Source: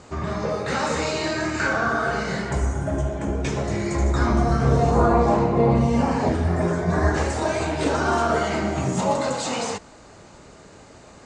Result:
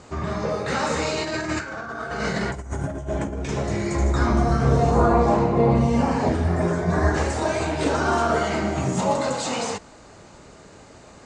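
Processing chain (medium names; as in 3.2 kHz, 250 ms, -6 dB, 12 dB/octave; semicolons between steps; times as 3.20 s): 1.15–3.49 s: compressor with a negative ratio -27 dBFS, ratio -0.5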